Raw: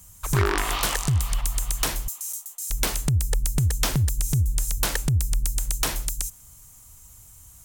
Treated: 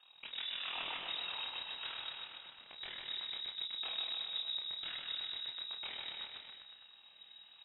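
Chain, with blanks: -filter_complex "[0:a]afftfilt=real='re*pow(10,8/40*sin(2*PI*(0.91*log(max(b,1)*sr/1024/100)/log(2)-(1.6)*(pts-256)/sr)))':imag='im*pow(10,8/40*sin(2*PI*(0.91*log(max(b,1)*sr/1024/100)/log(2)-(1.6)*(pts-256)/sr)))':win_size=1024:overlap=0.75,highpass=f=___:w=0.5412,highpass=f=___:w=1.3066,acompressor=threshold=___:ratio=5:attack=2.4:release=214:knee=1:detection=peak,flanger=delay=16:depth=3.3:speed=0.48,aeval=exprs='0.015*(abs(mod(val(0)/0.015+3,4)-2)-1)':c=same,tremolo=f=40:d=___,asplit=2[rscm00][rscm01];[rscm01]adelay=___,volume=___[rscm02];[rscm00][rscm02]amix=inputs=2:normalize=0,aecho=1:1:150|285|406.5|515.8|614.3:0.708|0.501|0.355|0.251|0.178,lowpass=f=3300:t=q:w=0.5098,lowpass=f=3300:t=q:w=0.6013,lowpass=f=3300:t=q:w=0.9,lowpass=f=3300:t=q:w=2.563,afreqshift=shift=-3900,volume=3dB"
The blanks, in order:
76, 76, -34dB, 0.889, 32, -7dB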